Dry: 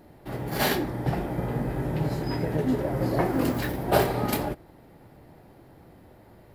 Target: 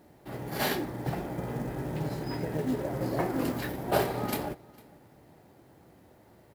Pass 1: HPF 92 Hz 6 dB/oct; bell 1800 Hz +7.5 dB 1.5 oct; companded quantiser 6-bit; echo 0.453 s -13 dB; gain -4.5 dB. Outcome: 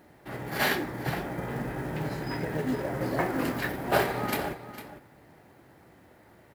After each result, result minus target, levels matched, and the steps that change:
echo-to-direct +11 dB; 2000 Hz band +5.5 dB
change: echo 0.453 s -24 dB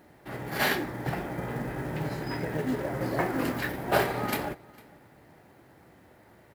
2000 Hz band +5.5 dB
remove: bell 1800 Hz +7.5 dB 1.5 oct

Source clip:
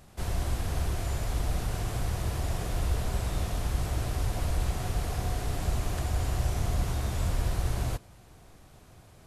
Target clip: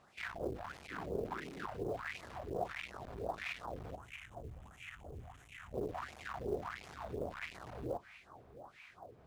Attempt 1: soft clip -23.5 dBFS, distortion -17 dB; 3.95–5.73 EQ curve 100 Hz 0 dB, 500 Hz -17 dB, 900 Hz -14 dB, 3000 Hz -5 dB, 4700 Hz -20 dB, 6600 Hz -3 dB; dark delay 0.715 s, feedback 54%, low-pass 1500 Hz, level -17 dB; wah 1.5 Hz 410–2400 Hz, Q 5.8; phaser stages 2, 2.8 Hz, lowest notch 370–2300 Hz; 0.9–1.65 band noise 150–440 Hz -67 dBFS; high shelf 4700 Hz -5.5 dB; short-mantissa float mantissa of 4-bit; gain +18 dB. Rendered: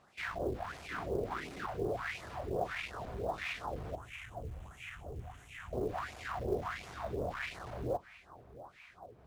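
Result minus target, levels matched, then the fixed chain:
soft clip: distortion -9 dB
soft clip -33.5 dBFS, distortion -8 dB; 3.95–5.73 EQ curve 100 Hz 0 dB, 500 Hz -17 dB, 900 Hz -14 dB, 3000 Hz -5 dB, 4700 Hz -20 dB, 6600 Hz -3 dB; dark delay 0.715 s, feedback 54%, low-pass 1500 Hz, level -17 dB; wah 1.5 Hz 410–2400 Hz, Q 5.8; phaser stages 2, 2.8 Hz, lowest notch 370–2300 Hz; 0.9–1.65 band noise 150–440 Hz -67 dBFS; high shelf 4700 Hz -5.5 dB; short-mantissa float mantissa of 4-bit; gain +18 dB

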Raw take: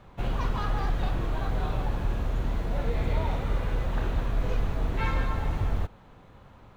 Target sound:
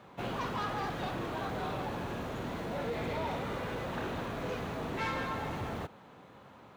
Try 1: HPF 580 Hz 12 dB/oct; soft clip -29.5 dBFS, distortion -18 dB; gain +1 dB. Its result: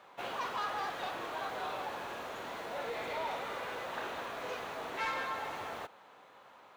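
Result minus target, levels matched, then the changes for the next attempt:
250 Hz band -10.0 dB
change: HPF 180 Hz 12 dB/oct

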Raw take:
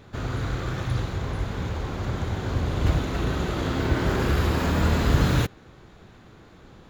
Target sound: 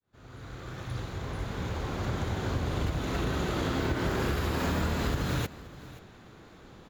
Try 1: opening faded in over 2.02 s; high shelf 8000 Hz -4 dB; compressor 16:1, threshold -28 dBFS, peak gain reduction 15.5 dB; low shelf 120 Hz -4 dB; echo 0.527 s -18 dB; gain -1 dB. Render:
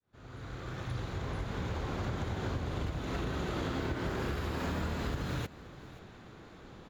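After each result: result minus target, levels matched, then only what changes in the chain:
compressor: peak gain reduction +5.5 dB; 8000 Hz band -3.0 dB
change: compressor 16:1, threshold -22 dBFS, peak gain reduction 10 dB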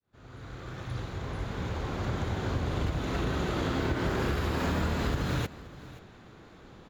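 8000 Hz band -3.0 dB
change: high shelf 8000 Hz +3.5 dB

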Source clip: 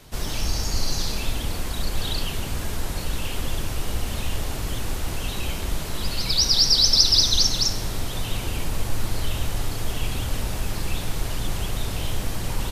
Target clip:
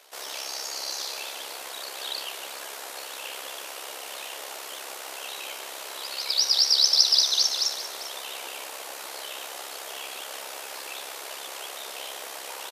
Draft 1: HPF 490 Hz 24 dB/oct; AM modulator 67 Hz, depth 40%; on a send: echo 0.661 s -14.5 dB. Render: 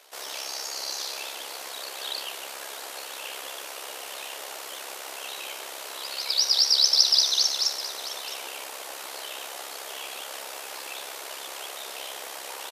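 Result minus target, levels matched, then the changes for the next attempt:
echo 0.266 s late
change: echo 0.395 s -14.5 dB

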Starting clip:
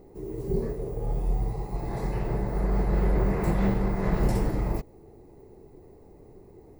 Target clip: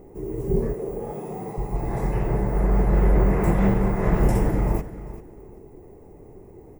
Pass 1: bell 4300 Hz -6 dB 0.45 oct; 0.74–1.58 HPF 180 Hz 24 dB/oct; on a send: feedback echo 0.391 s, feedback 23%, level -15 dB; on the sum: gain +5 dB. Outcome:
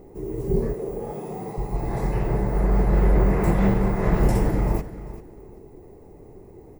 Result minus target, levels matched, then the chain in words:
4000 Hz band +3.5 dB
bell 4300 Hz -14 dB 0.45 oct; 0.74–1.58 HPF 180 Hz 24 dB/oct; on a send: feedback echo 0.391 s, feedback 23%, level -15 dB; on the sum: gain +5 dB

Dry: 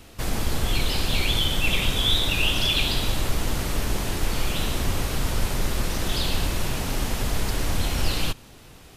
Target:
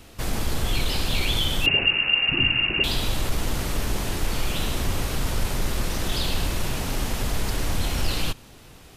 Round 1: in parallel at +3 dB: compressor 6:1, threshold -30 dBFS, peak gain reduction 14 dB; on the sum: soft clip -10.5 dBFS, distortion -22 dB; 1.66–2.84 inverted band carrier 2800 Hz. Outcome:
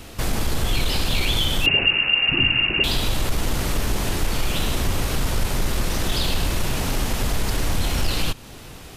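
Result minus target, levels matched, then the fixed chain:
compressor: peak gain reduction +14 dB
soft clip -10.5 dBFS, distortion -26 dB; 1.66–2.84 inverted band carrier 2800 Hz

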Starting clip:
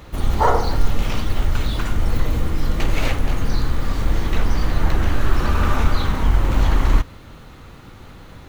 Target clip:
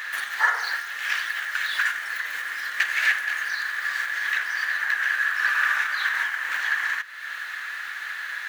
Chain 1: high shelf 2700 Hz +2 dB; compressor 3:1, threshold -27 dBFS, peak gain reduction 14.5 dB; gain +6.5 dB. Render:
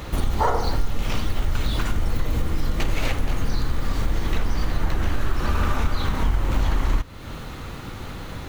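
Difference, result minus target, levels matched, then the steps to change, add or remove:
2000 Hz band -12.5 dB
add after compressor: resonant high-pass 1700 Hz, resonance Q 12

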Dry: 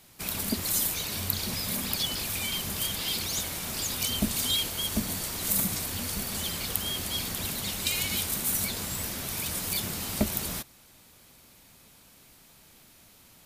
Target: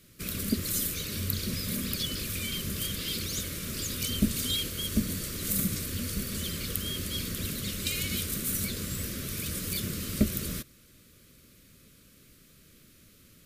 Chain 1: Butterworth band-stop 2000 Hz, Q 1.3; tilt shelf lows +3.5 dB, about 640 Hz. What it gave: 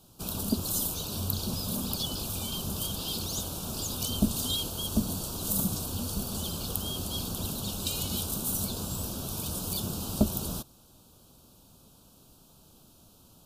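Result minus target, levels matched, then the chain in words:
2000 Hz band -10.5 dB
Butterworth band-stop 820 Hz, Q 1.3; tilt shelf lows +3.5 dB, about 640 Hz

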